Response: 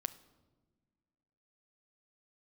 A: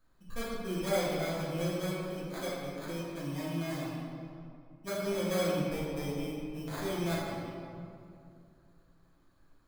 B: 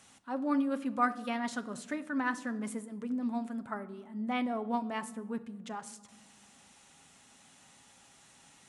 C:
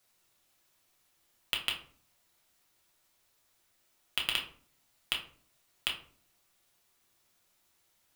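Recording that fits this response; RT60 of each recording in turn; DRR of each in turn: B; 2.5 s, 1.4 s, 0.50 s; -9.0 dB, 9.5 dB, -1.0 dB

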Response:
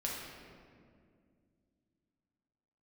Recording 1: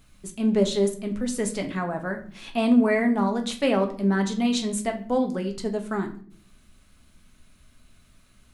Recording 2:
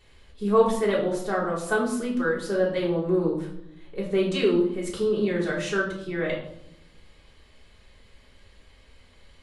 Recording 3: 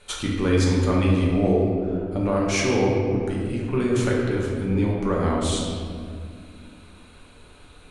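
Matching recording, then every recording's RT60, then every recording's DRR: 3; 0.50 s, 0.75 s, 2.2 s; 4.0 dB, -6.0 dB, -4.0 dB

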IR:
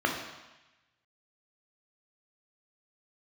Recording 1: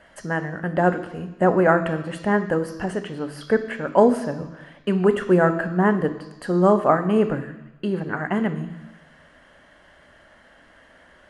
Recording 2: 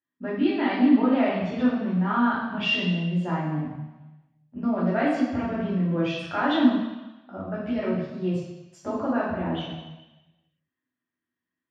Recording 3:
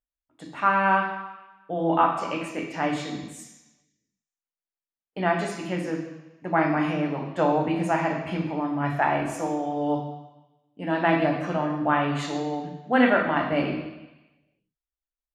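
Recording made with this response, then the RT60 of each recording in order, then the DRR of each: 3; 1.0 s, 1.0 s, 1.0 s; 9.0 dB, -8.0 dB, 1.0 dB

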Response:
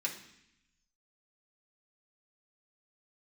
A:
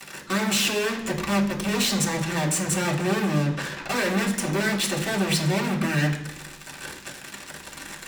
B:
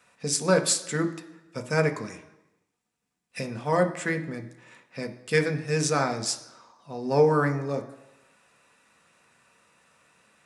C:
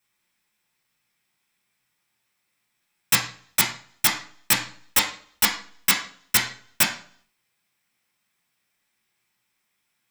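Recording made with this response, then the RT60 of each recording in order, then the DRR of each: A; 0.75 s, 1.0 s, 0.50 s; -3.5 dB, 5.0 dB, -3.0 dB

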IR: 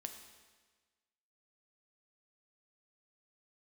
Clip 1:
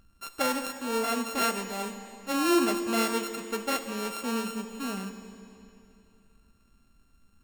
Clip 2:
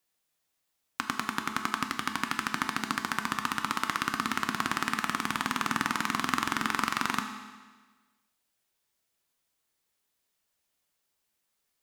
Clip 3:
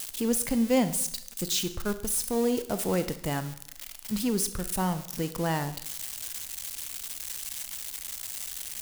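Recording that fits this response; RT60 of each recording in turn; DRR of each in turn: 2; 2.8 s, 1.4 s, 0.70 s; 7.5 dB, 5.0 dB, 10.5 dB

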